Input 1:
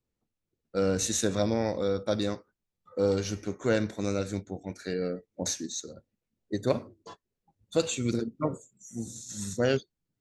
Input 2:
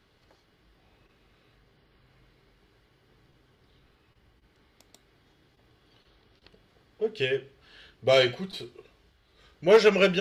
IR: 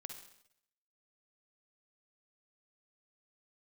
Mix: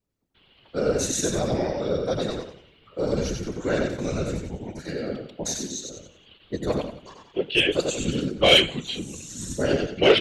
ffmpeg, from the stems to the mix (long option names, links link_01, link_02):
-filter_complex "[0:a]volume=1dB,asplit=2[link_01][link_02];[link_02]volume=-3.5dB[link_03];[1:a]firequalizer=gain_entry='entry(1800,0);entry(2900,14);entry(6100,-17)':delay=0.05:min_phase=1,adelay=350,volume=2.5dB[link_04];[link_03]aecho=0:1:91|182|273|364|455:1|0.36|0.13|0.0467|0.0168[link_05];[link_01][link_04][link_05]amix=inputs=3:normalize=0,acontrast=54,afftfilt=real='hypot(re,im)*cos(2*PI*random(0))':imag='hypot(re,im)*sin(2*PI*random(1))':win_size=512:overlap=0.75"